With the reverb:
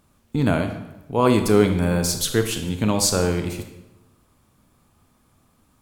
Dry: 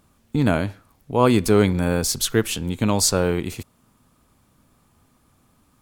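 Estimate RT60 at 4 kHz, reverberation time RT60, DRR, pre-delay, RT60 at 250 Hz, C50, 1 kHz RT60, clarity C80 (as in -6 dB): 0.75 s, 1.0 s, 6.0 dB, 23 ms, 1.1 s, 8.0 dB, 0.95 s, 10.5 dB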